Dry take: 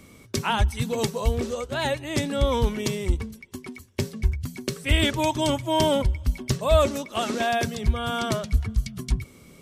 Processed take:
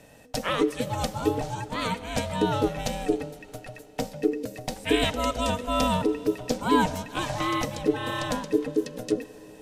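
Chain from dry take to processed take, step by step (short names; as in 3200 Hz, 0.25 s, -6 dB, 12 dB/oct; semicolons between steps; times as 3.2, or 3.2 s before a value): ring modulator 370 Hz; Schroeder reverb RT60 3.9 s, combs from 32 ms, DRR 16 dB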